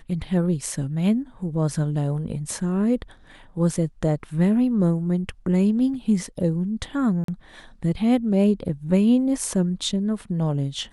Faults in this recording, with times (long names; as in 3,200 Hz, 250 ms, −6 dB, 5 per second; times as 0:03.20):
0:07.24–0:07.28: drop-out 43 ms